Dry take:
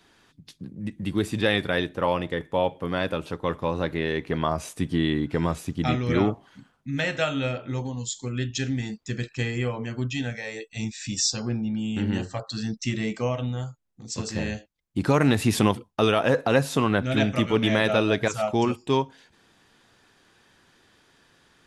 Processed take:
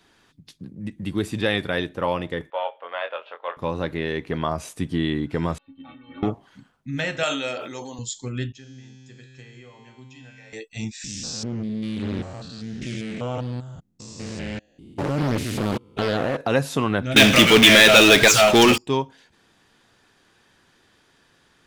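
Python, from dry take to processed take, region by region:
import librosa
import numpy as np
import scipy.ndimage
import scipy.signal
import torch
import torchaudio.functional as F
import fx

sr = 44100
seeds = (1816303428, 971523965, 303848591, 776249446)

y = fx.chain(x, sr, fx.halfwave_gain(db=-3.0),
    fx.cheby1_bandpass(low_hz=570.0, high_hz=3200.0, order=3),
    fx.doubler(ms=23.0, db=-7.0), at=(2.5, 3.57))
y = fx.chain(y, sr, fx.cheby_ripple(hz=4100.0, ripple_db=6),
    fx.stiff_resonator(f0_hz=270.0, decay_s=0.23, stiffness=0.008), at=(5.58, 6.23))
y = fx.chain(y, sr, fx.highpass(hz=190.0, slope=12),
    fx.bass_treble(bass_db=-11, treble_db=10),
    fx.sustainer(db_per_s=42.0), at=(7.23, 7.99))
y = fx.chain(y, sr, fx.low_shelf(hz=120.0, db=-10.0),
    fx.comb_fb(f0_hz=130.0, decay_s=2.0, harmonics='all', damping=0.0, mix_pct=90),
    fx.band_squash(depth_pct=70), at=(8.52, 10.53))
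y = fx.chain(y, sr, fx.spec_steps(hold_ms=200),
    fx.doppler_dist(depth_ms=0.7), at=(11.04, 16.41))
y = fx.chain(y, sr, fx.weighting(curve='D'),
    fx.power_curve(exponent=0.5), at=(17.16, 18.78))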